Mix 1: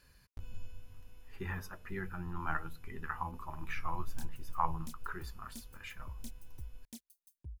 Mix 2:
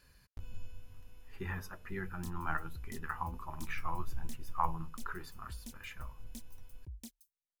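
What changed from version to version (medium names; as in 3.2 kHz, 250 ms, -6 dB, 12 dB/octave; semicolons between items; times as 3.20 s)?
background: entry -1.95 s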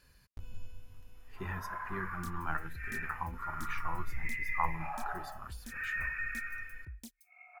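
first sound: unmuted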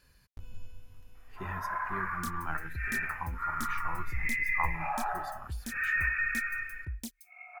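first sound +7.0 dB; second sound +8.5 dB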